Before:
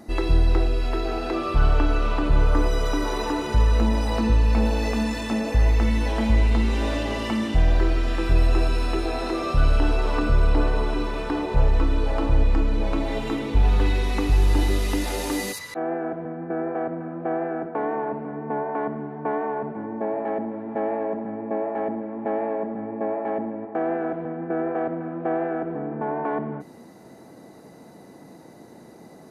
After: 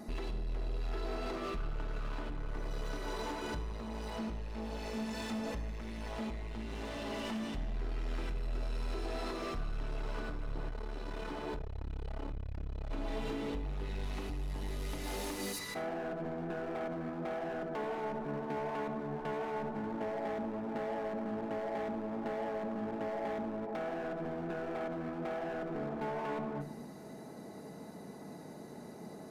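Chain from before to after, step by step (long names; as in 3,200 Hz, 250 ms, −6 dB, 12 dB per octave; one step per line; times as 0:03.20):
downward compressor 8 to 1, threshold −29 dBFS, peak gain reduction 16 dB
hard clipping −32.5 dBFS, distortion −10 dB
rectangular room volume 2,200 cubic metres, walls furnished, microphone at 1.4 metres
0:10.69–0:12.91: saturating transformer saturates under 86 Hz
level −3.5 dB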